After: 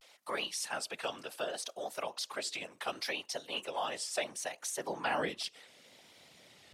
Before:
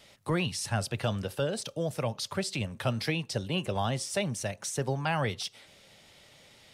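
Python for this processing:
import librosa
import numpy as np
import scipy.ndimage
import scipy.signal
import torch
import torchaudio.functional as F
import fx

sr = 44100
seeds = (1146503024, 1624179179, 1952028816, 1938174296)

y = fx.whisperise(x, sr, seeds[0])
y = fx.filter_sweep_highpass(y, sr, from_hz=610.0, to_hz=110.0, start_s=4.54, end_s=6.39, q=0.74)
y = fx.vibrato(y, sr, rate_hz=0.69, depth_cents=81.0)
y = y * librosa.db_to_amplitude(-2.5)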